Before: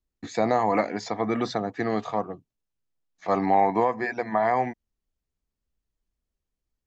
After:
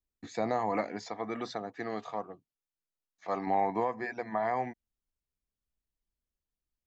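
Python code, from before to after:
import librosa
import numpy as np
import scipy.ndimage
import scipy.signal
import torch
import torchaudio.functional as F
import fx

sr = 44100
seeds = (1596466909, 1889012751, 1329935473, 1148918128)

y = fx.low_shelf(x, sr, hz=230.0, db=-8.5, at=(1.02, 3.47))
y = y * librosa.db_to_amplitude(-8.0)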